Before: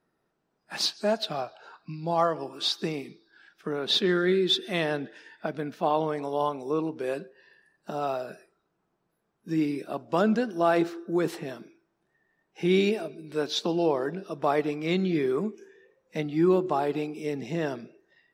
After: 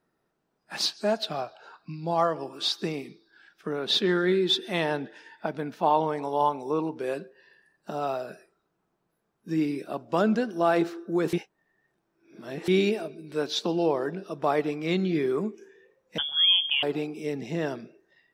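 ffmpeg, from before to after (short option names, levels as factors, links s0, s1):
-filter_complex "[0:a]asettb=1/sr,asplit=3[s0][s1][s2];[s0]atrim=end=4.074[s3];[s1]atrim=start=4.07:end=6.99,asetpts=PTS-STARTPTS,afade=t=in:d=0.004:c=qsin,afade=t=out:st=2.916:d=0.004:c=qsin,equalizer=f=890:w=5.8:g=8.5[s4];[s2]atrim=start=6.986[s5];[s3][s4]acrossfade=d=0.004:c1=hsin:c2=qsin[s6];[s6][s5]acrossfade=d=0.004:c1=qsin:c2=hsin,asettb=1/sr,asplit=3[s7][s8][s9];[s7]atrim=end=16.184[s10];[s8]atrim=start=16.18:end=16.83,asetpts=PTS-STARTPTS,afade=t=in:d=0.004:c=qsin,afade=t=out:st=0.646:d=0.004:c=qsin,lowpass=f=3100:t=q:w=0.5098,lowpass=f=3100:t=q:w=0.6013,lowpass=f=3100:t=q:w=0.9,lowpass=f=3100:t=q:w=2.563,afreqshift=-3600[s11];[s9]atrim=start=16.826[s12];[s10][s11]acrossfade=d=0.004:c1=hsin:c2=qsin[s13];[s13][s12]acrossfade=d=0.004:c1=qsin:c2=hsin,asplit=3[s14][s15][s16];[s14]atrim=end=11.332[s17];[s15]atrim=start=11.328:end=12.682,asetpts=PTS-STARTPTS,areverse[s18];[s16]atrim=start=12.678[s19];[s17][s18]acrossfade=d=0.004:c1=hsin:c2=hsin[s20];[s20][s19]acrossfade=d=0.004:c1=hsin:c2=hsin"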